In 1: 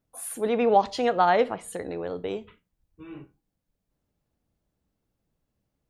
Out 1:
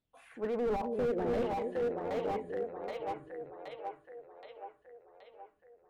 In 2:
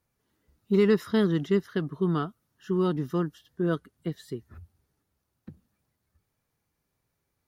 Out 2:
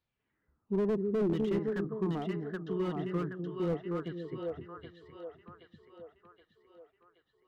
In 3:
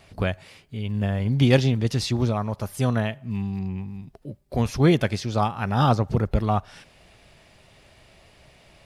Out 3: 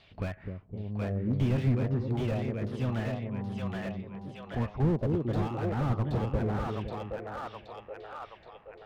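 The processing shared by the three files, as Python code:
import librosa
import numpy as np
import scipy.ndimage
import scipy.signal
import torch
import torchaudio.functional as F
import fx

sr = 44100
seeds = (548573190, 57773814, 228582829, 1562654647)

y = fx.filter_lfo_lowpass(x, sr, shape='saw_down', hz=0.75, low_hz=300.0, high_hz=3900.0, q=3.1)
y = fx.echo_split(y, sr, split_hz=460.0, low_ms=256, high_ms=774, feedback_pct=52, wet_db=-4.0)
y = fx.slew_limit(y, sr, full_power_hz=48.0)
y = y * librosa.db_to_amplitude(-9.0)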